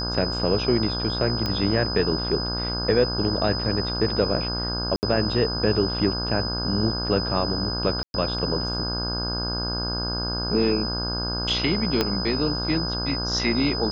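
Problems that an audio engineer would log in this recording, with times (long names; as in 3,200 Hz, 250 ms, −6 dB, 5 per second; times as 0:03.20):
mains buzz 60 Hz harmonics 27 −30 dBFS
whistle 5,000 Hz −28 dBFS
0:01.46: click −13 dBFS
0:04.96–0:05.03: drop-out 69 ms
0:08.03–0:08.14: drop-out 111 ms
0:12.01: click −7 dBFS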